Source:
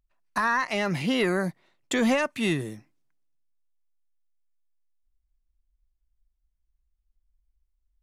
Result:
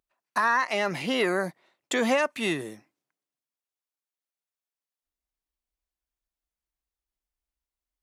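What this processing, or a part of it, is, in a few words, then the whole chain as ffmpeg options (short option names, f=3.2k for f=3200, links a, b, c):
filter by subtraction: -filter_complex "[0:a]asplit=2[a][b];[b]lowpass=580,volume=-1[c];[a][c]amix=inputs=2:normalize=0"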